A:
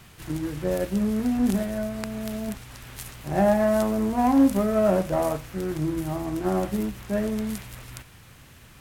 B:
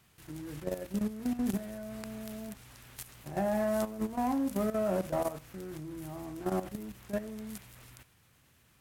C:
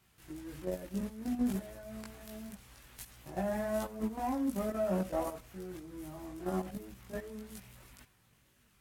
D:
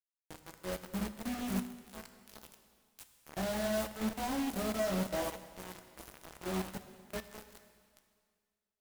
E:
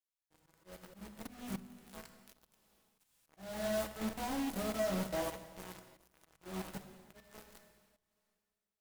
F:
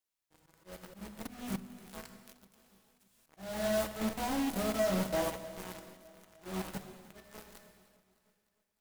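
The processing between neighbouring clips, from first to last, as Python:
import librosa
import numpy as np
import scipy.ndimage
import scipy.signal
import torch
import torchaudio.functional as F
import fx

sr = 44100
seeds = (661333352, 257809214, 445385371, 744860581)

y1 = fx.highpass(x, sr, hz=58.0, slope=6)
y1 = fx.high_shelf(y1, sr, hz=7500.0, db=4.5)
y1 = fx.level_steps(y1, sr, step_db=12)
y1 = F.gain(torch.from_numpy(y1), -5.5).numpy()
y2 = fx.chorus_voices(y1, sr, voices=6, hz=0.52, base_ms=19, depth_ms=3.1, mix_pct=50)
y3 = fx.quant_companded(y2, sr, bits=2)
y3 = fx.rev_plate(y3, sr, seeds[0], rt60_s=2.0, hf_ratio=1.0, predelay_ms=0, drr_db=7.0)
y3 = fx.upward_expand(y3, sr, threshold_db=-35.0, expansion=1.5)
y3 = F.gain(torch.from_numpy(y3), -6.5).numpy()
y4 = fx.auto_swell(y3, sr, attack_ms=319.0)
y4 = fx.room_shoebox(y4, sr, seeds[1], volume_m3=2100.0, walls='furnished', distance_m=0.62)
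y4 = F.gain(torch.from_numpy(y4), -2.5).numpy()
y5 = fx.echo_feedback(y4, sr, ms=304, feedback_pct=59, wet_db=-19.5)
y5 = F.gain(torch.from_numpy(y5), 4.0).numpy()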